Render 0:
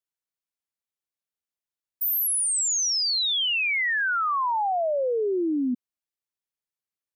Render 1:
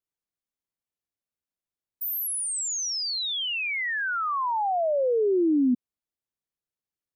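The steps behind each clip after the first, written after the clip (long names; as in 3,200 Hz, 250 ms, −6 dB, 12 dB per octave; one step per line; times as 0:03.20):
tilt shelving filter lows +5 dB, about 670 Hz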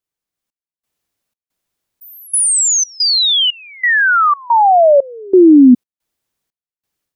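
automatic gain control gain up to 11 dB
gate pattern "xxx..xxx." 90 BPM −24 dB
level +5.5 dB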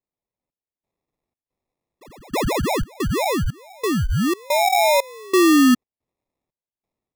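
decimation without filtering 29×
level −8 dB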